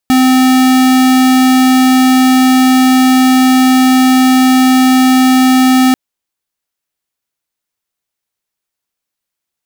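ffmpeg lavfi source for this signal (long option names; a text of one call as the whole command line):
ffmpeg -f lavfi -i "aevalsrc='0.422*(2*lt(mod(258*t,1),0.5)-1)':duration=5.84:sample_rate=44100" out.wav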